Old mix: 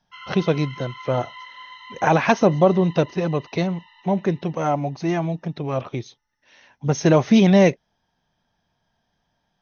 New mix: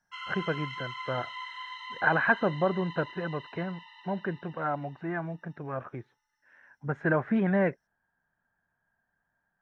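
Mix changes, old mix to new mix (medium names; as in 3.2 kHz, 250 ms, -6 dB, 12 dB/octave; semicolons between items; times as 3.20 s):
speech: add four-pole ladder low-pass 1.7 kHz, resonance 75%; master: remove brick-wall FIR low-pass 6.5 kHz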